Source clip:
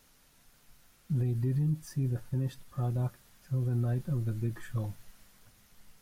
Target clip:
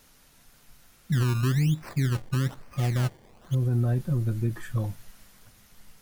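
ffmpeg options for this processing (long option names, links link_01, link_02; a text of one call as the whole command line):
ffmpeg -i in.wav -filter_complex "[0:a]asettb=1/sr,asplit=3[link_01][link_02][link_03];[link_01]atrim=end=1.124[link_04];[link_02]atrim=start=1.12:end=3.55,asetpts=PTS-STARTPTS,afade=type=in:duration=0.004:curve=qsin,afade=type=out:start_time=2.426:duration=0.004:curve=qsin,acrusher=samples=23:mix=1:aa=0.000001:lfo=1:lforange=23:lforate=1.1[link_05];[link_03]atrim=start=3.546[link_06];[link_04][link_05]acrossfade=duration=0.004:curve1=hsin:curve2=qsin[link_07];[link_07][link_06]acrossfade=duration=0.004:curve1=qsin:curve2=hsin,volume=5.5dB" out.wav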